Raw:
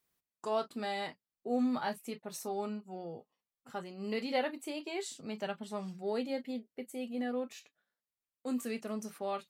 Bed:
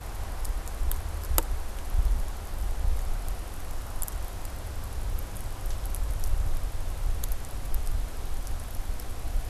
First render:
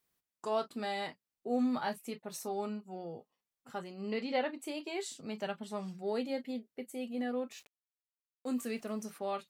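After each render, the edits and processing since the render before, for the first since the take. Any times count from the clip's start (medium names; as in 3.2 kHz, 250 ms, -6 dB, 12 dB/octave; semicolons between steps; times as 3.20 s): 4.01–4.62 s: distance through air 81 m; 7.57–9.02 s: small samples zeroed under -58 dBFS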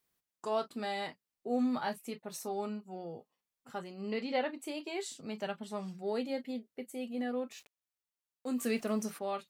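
8.61–9.19 s: gain +5.5 dB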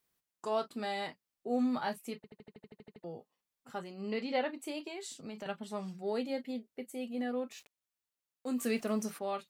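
2.16 s: stutter in place 0.08 s, 11 plays; 4.87–5.46 s: compression, threshold -39 dBFS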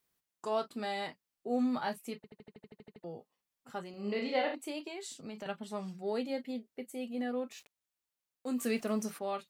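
3.90–4.55 s: flutter echo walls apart 5.9 m, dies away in 0.46 s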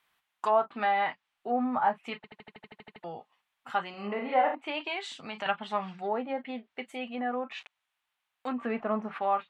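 low-pass that closes with the level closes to 980 Hz, closed at -31 dBFS; high-order bell 1.6 kHz +14.5 dB 2.7 oct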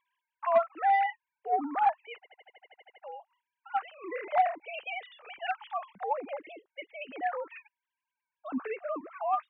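formants replaced by sine waves; saturation -14 dBFS, distortion -21 dB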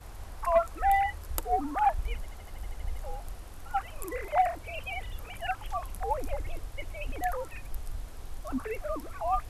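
add bed -8.5 dB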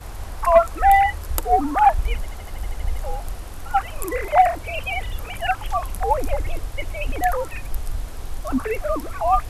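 trim +10.5 dB; peak limiter -3 dBFS, peak gain reduction 2.5 dB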